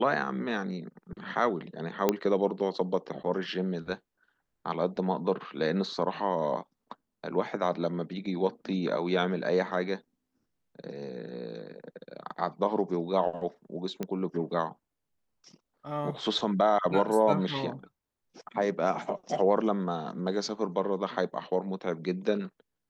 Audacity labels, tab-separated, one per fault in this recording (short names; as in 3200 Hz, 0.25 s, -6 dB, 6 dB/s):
2.090000	2.090000	pop -10 dBFS
14.030000	14.030000	pop -19 dBFS